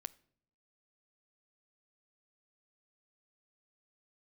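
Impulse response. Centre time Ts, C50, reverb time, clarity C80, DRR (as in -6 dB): 2 ms, 22.0 dB, not exponential, 25.0 dB, 16.5 dB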